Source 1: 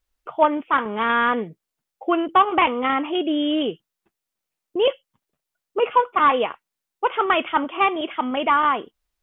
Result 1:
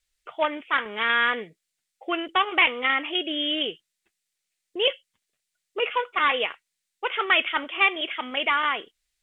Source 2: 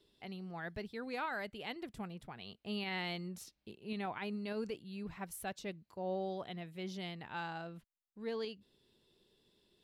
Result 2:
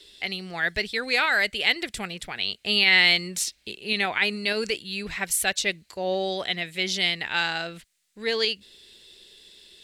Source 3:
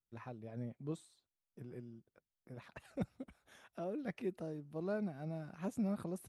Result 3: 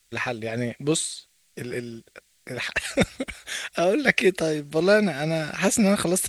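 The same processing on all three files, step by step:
ten-band EQ 125 Hz -10 dB, 250 Hz -6 dB, 1000 Hz -7 dB, 2000 Hz +9 dB, 4000 Hz +7 dB, 8000 Hz +11 dB; AC-3 96 kbps 44100 Hz; match loudness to -24 LUFS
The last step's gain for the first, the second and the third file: -4.5, +14.5, +23.5 dB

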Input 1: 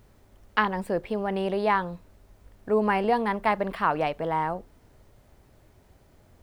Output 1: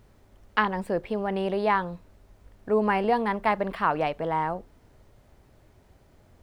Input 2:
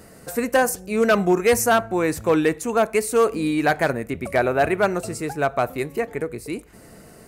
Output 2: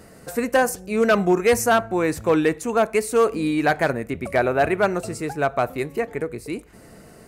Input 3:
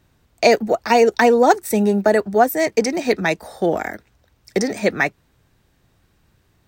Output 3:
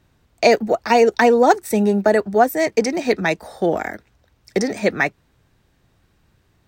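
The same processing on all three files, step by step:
high shelf 8300 Hz -5 dB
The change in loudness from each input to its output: 0.0, 0.0, 0.0 LU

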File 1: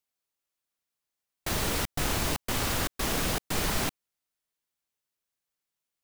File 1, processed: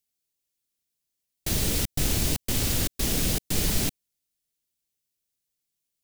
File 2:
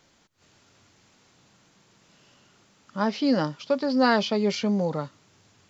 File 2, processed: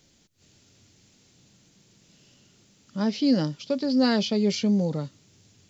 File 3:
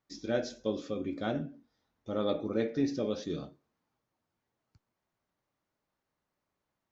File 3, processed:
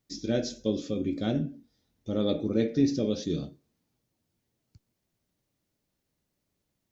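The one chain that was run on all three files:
bell 1100 Hz -15 dB 2.1 oct; normalise peaks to -12 dBFS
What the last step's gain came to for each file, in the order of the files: +6.0, +4.5, +9.0 dB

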